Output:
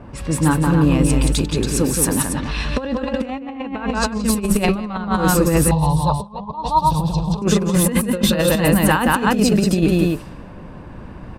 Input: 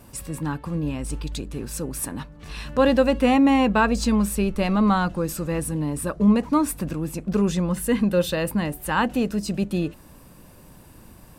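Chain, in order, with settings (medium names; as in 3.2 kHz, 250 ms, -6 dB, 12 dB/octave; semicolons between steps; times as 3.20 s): loudspeakers at several distances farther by 60 m -4 dB, 96 m -6 dB; compressor with a negative ratio -23 dBFS, ratio -0.5; 5.71–7.42 s: FFT filter 170 Hz 0 dB, 250 Hz -23 dB, 600 Hz -4 dB, 920 Hz +13 dB, 1.5 kHz -23 dB, 2.3 kHz -21 dB, 3.7 kHz +8 dB, 7.1 kHz -12 dB, 10 kHz -15 dB; level-controlled noise filter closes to 1.5 kHz, open at -20.5 dBFS; trim +7 dB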